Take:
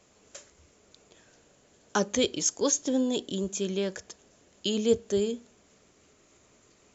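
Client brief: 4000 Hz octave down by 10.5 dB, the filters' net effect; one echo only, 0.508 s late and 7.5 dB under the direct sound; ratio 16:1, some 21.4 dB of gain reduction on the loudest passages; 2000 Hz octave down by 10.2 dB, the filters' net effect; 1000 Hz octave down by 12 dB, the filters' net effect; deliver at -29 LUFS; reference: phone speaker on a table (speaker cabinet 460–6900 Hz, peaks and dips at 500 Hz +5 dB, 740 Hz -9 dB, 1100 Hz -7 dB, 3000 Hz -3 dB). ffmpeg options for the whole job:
-af "equalizer=f=1k:t=o:g=-5.5,equalizer=f=2k:t=o:g=-8.5,equalizer=f=4k:t=o:g=-8.5,acompressor=threshold=-40dB:ratio=16,highpass=f=460:w=0.5412,highpass=f=460:w=1.3066,equalizer=f=500:t=q:w=4:g=5,equalizer=f=740:t=q:w=4:g=-9,equalizer=f=1.1k:t=q:w=4:g=-7,equalizer=f=3k:t=q:w=4:g=-3,lowpass=f=6.9k:w=0.5412,lowpass=f=6.9k:w=1.3066,aecho=1:1:508:0.422,volume=21dB"

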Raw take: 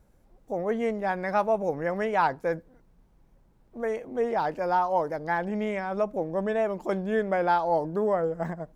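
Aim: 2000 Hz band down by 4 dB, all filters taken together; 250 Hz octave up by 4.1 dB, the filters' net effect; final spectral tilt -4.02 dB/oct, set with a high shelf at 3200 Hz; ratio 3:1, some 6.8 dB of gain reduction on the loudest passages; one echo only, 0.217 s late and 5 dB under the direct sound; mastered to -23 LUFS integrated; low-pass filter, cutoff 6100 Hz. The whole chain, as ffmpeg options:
-af "lowpass=6.1k,equalizer=f=250:t=o:g=5.5,equalizer=f=2k:t=o:g=-8,highshelf=f=3.2k:g=8.5,acompressor=threshold=-29dB:ratio=3,aecho=1:1:217:0.562,volume=8dB"

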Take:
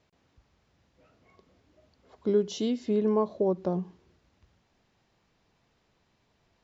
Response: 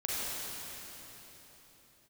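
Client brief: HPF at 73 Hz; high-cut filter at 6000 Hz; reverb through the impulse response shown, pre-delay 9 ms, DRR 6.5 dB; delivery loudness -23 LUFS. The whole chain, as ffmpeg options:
-filter_complex "[0:a]highpass=73,lowpass=6k,asplit=2[a][b];[1:a]atrim=start_sample=2205,adelay=9[c];[b][c]afir=irnorm=-1:irlink=0,volume=-13.5dB[d];[a][d]amix=inputs=2:normalize=0,volume=5.5dB"

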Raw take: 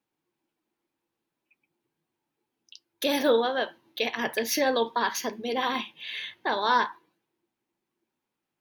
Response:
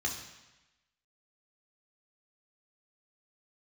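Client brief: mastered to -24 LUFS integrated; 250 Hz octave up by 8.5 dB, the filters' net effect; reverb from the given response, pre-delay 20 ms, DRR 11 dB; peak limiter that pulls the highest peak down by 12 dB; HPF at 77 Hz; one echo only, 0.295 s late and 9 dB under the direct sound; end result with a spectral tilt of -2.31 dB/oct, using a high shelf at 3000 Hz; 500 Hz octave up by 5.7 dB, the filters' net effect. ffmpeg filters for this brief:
-filter_complex "[0:a]highpass=77,equalizer=f=250:t=o:g=8.5,equalizer=f=500:t=o:g=4.5,highshelf=f=3k:g=-6,alimiter=limit=-17.5dB:level=0:latency=1,aecho=1:1:295:0.355,asplit=2[a][b];[1:a]atrim=start_sample=2205,adelay=20[c];[b][c]afir=irnorm=-1:irlink=0,volume=-15.5dB[d];[a][d]amix=inputs=2:normalize=0,volume=3.5dB"

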